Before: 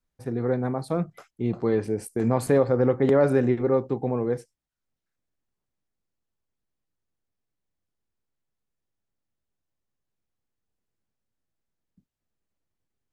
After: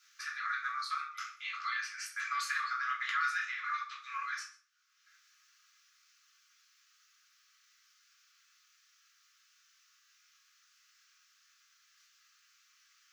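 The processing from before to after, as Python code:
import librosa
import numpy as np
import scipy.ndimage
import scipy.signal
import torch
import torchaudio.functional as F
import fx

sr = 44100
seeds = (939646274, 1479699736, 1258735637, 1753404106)

p1 = fx.brickwall_highpass(x, sr, low_hz=1100.0)
p2 = fx.high_shelf_res(p1, sr, hz=7400.0, db=-7.5, q=3.0)
p3 = p2 + fx.echo_single(p2, sr, ms=124, db=-21.0, dry=0)
p4 = fx.room_shoebox(p3, sr, seeds[0], volume_m3=260.0, walls='furnished', distance_m=3.0)
y = fx.band_squash(p4, sr, depth_pct=70)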